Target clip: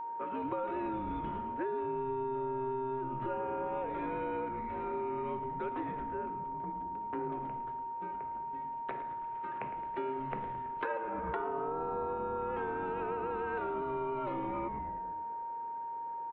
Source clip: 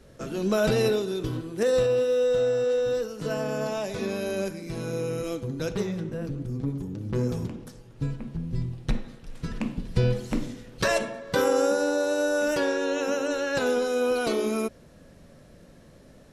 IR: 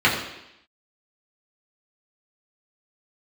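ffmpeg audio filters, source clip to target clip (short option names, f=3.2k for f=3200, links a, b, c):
-filter_complex "[0:a]acrossover=split=440 2100:gain=0.0794 1 0.1[a][b][c];[a][b][c]amix=inputs=3:normalize=0,highpass=f=280:t=q:w=0.5412,highpass=f=280:t=q:w=1.307,lowpass=f=3.3k:t=q:w=0.5176,lowpass=f=3.3k:t=q:w=0.7071,lowpass=f=3.3k:t=q:w=1.932,afreqshift=-100,asettb=1/sr,asplit=3[d][e][f];[d]atrim=end=10.904[g];[e]atrim=start=10.9:end=12.18,asetpts=PTS-STARTPTS,afade=t=in:d=0.004:c=qsin,afade=t=out:st=1.276:d=0.004:c=qsin,equalizer=f=900:w=0.75:g=7.5[h];[f]atrim=start=12.176[i];[g][h]acrossfade=d=0.004:c1=hsin:c2=qsin[j];[j][i]acrossfade=d=0.004:c1=qsin:c2=hsin,asplit=2[k][l];[l]asplit=8[m][n][o][p][q][r][s][t];[m]adelay=109,afreqshift=-130,volume=-11.5dB[u];[n]adelay=218,afreqshift=-260,volume=-15.2dB[v];[o]adelay=327,afreqshift=-390,volume=-19dB[w];[p]adelay=436,afreqshift=-520,volume=-22.7dB[x];[q]adelay=545,afreqshift=-650,volume=-26.5dB[y];[r]adelay=654,afreqshift=-780,volume=-30.2dB[z];[s]adelay=763,afreqshift=-910,volume=-34dB[aa];[t]adelay=872,afreqshift=-1040,volume=-37.7dB[ab];[u][v][w][x][y][z][aa][ab]amix=inputs=8:normalize=0[ac];[k][ac]amix=inputs=2:normalize=0,acompressor=threshold=-34dB:ratio=16,aeval=exprs='val(0)+0.0141*sin(2*PI*930*n/s)':c=same"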